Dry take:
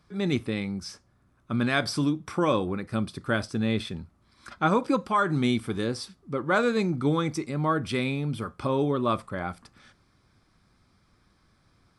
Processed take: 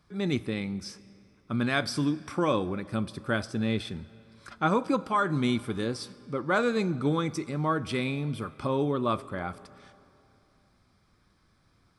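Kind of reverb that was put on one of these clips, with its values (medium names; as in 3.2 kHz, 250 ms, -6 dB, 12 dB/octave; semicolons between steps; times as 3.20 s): algorithmic reverb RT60 2.9 s, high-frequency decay 0.8×, pre-delay 25 ms, DRR 19 dB; trim -2 dB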